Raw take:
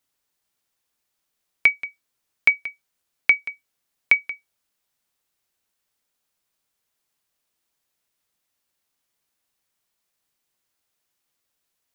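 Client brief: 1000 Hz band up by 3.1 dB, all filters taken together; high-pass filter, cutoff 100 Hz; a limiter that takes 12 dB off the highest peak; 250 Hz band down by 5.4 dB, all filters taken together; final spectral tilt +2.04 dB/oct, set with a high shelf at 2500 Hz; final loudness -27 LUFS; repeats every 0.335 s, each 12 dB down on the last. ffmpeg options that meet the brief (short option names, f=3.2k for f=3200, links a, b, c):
-af "highpass=100,equalizer=f=250:t=o:g=-7.5,equalizer=f=1k:t=o:g=6,highshelf=f=2.5k:g=-9,alimiter=limit=-17.5dB:level=0:latency=1,aecho=1:1:335|670|1005:0.251|0.0628|0.0157,volume=5.5dB"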